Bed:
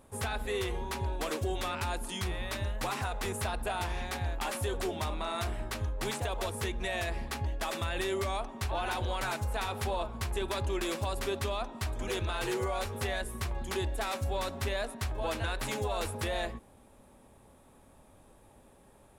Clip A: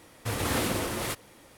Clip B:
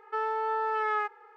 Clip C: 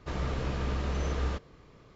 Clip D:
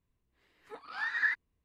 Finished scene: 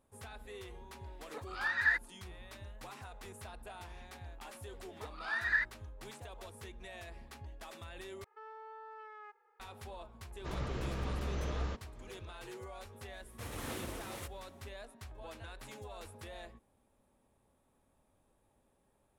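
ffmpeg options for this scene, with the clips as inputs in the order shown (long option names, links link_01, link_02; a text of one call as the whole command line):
ffmpeg -i bed.wav -i cue0.wav -i cue1.wav -i cue2.wav -i cue3.wav -filter_complex "[4:a]asplit=2[link_01][link_02];[0:a]volume=-15dB[link_03];[2:a]alimiter=level_in=1dB:limit=-24dB:level=0:latency=1:release=71,volume=-1dB[link_04];[1:a]equalizer=frequency=4700:width_type=o:width=0.29:gain=-3.5[link_05];[link_03]asplit=2[link_06][link_07];[link_06]atrim=end=8.244[link_08];[link_04]atrim=end=1.36,asetpts=PTS-STARTPTS,volume=-17dB[link_09];[link_07]atrim=start=9.596[link_10];[link_01]atrim=end=1.64,asetpts=PTS-STARTPTS,afade=type=in:duration=0.004:curve=hsin,afade=type=out:start_time=1.636:duration=0.004:curve=hsin,adelay=630[link_11];[link_02]atrim=end=1.64,asetpts=PTS-STARTPTS,volume=-1.5dB,afade=type=in:duration=0.004:curve=hsin,afade=type=out:start_time=1.636:duration=0.004:curve=hsin,adelay=4300[link_12];[3:a]atrim=end=1.95,asetpts=PTS-STARTPTS,volume=-6dB,afade=type=in:duration=0.004:curve=hsin,afade=type=out:start_time=1.946:duration=0.004:curve=hsin,adelay=10380[link_13];[link_05]atrim=end=1.57,asetpts=PTS-STARTPTS,volume=-14dB,afade=type=in:duration=0.004:curve=hsin,afade=type=out:start_time=1.566:duration=0.004:curve=hsin,adelay=13130[link_14];[link_08][link_09]acrossfade=duration=0.004:curve1=hsin:curve2=hsin[link_15];[link_15][link_10]acrossfade=duration=0.004:curve1=hsin:curve2=hsin[link_16];[link_16][link_11][link_12][link_13][link_14]amix=inputs=5:normalize=0" out.wav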